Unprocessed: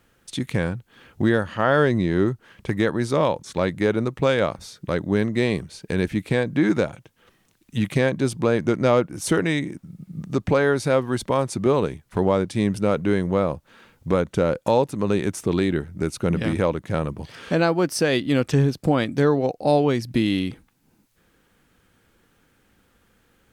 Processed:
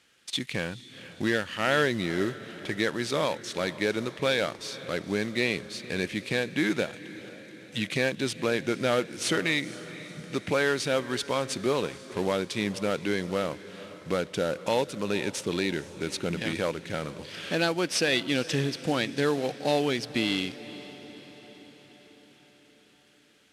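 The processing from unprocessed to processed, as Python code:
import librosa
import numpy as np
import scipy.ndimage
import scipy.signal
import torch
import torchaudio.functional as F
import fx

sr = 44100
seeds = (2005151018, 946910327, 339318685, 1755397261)

y = fx.cvsd(x, sr, bps=64000)
y = fx.weighting(y, sr, curve='D')
y = fx.echo_diffused(y, sr, ms=480, feedback_pct=58, wet_db=-16)
y = y * librosa.db_to_amplitude(-6.5)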